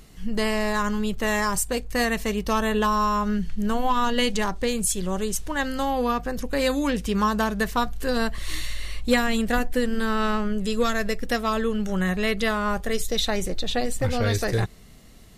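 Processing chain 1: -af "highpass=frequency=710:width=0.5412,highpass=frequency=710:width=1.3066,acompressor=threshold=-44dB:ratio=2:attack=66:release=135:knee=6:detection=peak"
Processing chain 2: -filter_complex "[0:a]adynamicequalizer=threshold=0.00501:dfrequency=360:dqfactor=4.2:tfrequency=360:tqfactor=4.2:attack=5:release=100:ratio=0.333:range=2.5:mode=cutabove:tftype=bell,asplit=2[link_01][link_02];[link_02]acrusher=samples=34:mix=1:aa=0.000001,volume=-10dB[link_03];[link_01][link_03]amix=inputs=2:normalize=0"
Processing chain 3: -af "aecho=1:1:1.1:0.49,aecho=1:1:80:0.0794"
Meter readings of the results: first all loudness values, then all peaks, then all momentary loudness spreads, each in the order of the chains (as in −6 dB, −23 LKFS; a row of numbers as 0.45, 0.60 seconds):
−36.0, −24.0, −24.0 LKFS; −17.0, −8.0, −8.5 dBFS; 5, 5, 5 LU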